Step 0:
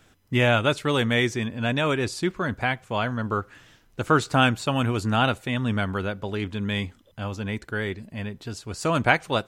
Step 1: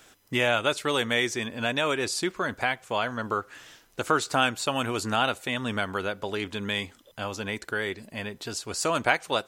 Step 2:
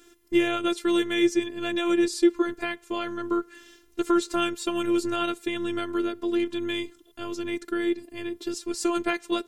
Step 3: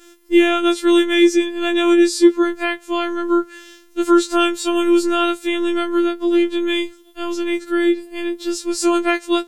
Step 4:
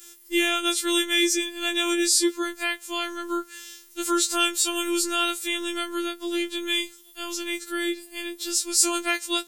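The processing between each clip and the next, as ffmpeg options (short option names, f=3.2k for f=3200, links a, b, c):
-af "bass=f=250:g=-12,treble=f=4k:g=5,acompressor=threshold=-35dB:ratio=1.5,volume=4dB"
-af "lowshelf=f=510:t=q:w=3:g=6.5,afftfilt=real='hypot(re,im)*cos(PI*b)':imag='0':win_size=512:overlap=0.75"
-af "acontrast=37,afftfilt=real='re*4*eq(mod(b,16),0)':imag='im*4*eq(mod(b,16),0)':win_size=2048:overlap=0.75,volume=-5.5dB"
-af "crystalizer=i=9.5:c=0,volume=-13.5dB"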